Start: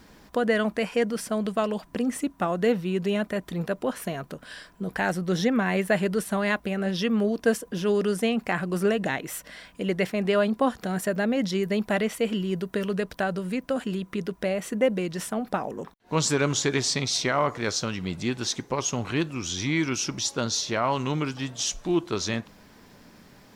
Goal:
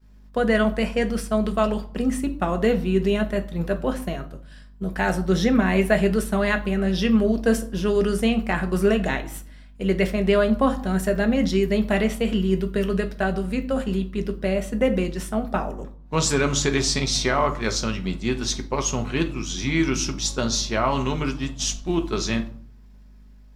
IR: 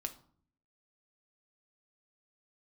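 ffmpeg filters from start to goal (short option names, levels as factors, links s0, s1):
-filter_complex "[0:a]aeval=exprs='val(0)+0.0141*(sin(2*PI*50*n/s)+sin(2*PI*2*50*n/s)/2+sin(2*PI*3*50*n/s)/3+sin(2*PI*4*50*n/s)/4+sin(2*PI*5*50*n/s)/5)':c=same,agate=range=0.0224:threshold=0.0447:ratio=3:detection=peak[s0];[1:a]atrim=start_sample=2205[s1];[s0][s1]afir=irnorm=-1:irlink=0,volume=1.58"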